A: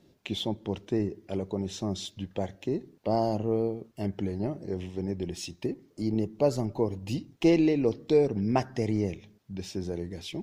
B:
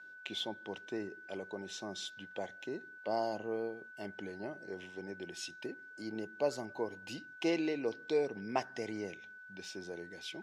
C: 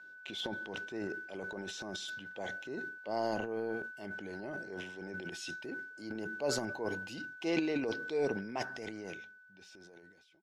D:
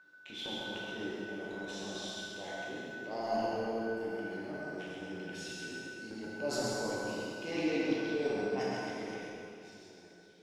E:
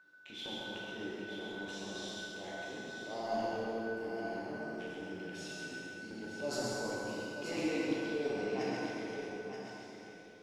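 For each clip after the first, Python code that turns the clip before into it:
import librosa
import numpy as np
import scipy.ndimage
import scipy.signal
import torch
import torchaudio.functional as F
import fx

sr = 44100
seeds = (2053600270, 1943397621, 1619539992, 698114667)

y1 = x + 10.0 ** (-46.0 / 20.0) * np.sin(2.0 * np.pi * 1500.0 * np.arange(len(x)) / sr)
y1 = fx.weighting(y1, sr, curve='A')
y1 = y1 * librosa.db_to_amplitude(-5.0)
y2 = fx.fade_out_tail(y1, sr, length_s=2.49)
y2 = fx.transient(y2, sr, attack_db=-5, sustain_db=11)
y3 = y2 + 10.0 ** (-4.5 / 20.0) * np.pad(y2, (int(133 * sr / 1000.0), 0))[:len(y2)]
y3 = fx.rev_plate(y3, sr, seeds[0], rt60_s=2.6, hf_ratio=0.85, predelay_ms=0, drr_db=-6.0)
y3 = y3 * librosa.db_to_amplitude(-6.5)
y4 = y3 + 10.0 ** (-8.0 / 20.0) * np.pad(y3, (int(930 * sr / 1000.0), 0))[:len(y3)]
y4 = y4 * librosa.db_to_amplitude(-2.5)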